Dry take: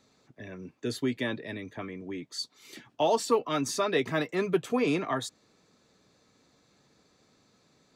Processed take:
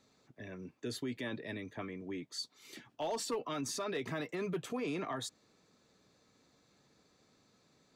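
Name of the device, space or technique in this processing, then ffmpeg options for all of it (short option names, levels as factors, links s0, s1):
clipper into limiter: -af "asoftclip=type=hard:threshold=0.119,alimiter=level_in=1.26:limit=0.0631:level=0:latency=1:release=33,volume=0.794,volume=0.631"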